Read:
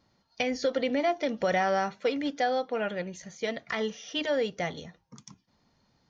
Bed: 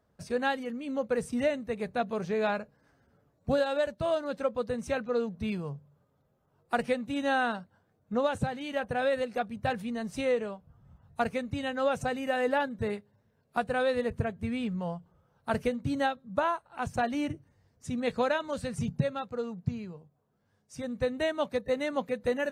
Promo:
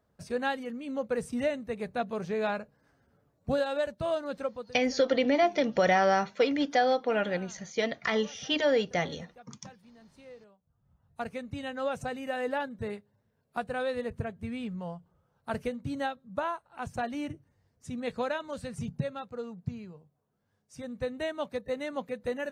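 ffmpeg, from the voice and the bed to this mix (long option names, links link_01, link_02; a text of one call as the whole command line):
ffmpeg -i stem1.wav -i stem2.wav -filter_complex "[0:a]adelay=4350,volume=2.5dB[link_01];[1:a]volume=16.5dB,afade=type=out:start_time=4.37:duration=0.38:silence=0.0944061,afade=type=in:start_time=10.58:duration=0.98:silence=0.125893[link_02];[link_01][link_02]amix=inputs=2:normalize=0" out.wav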